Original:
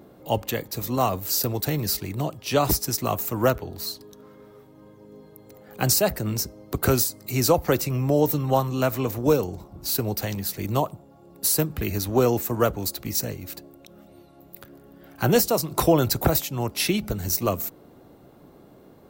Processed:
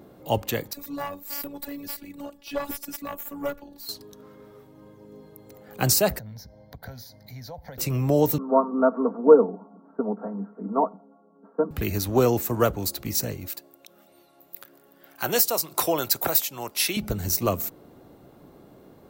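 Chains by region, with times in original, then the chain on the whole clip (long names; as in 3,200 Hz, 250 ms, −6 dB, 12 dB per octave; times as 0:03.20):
0:00.73–0:03.89: dynamic equaliser 5,800 Hz, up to −5 dB, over −42 dBFS, Q 1.7 + phases set to zero 284 Hz + tube saturation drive 17 dB, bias 0.75
0:06.19–0:07.78: low-pass filter 3,100 Hz 6 dB per octave + downward compressor 2.5 to 1, threshold −40 dBFS + phaser with its sweep stopped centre 1,800 Hz, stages 8
0:08.38–0:11.71: Chebyshev band-pass filter 190–1,400 Hz, order 5 + comb filter 4.4 ms, depth 89% + multiband upward and downward expander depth 40%
0:13.48–0:16.97: high-pass filter 830 Hz 6 dB per octave + high-shelf EQ 10,000 Hz +5 dB
whole clip: no processing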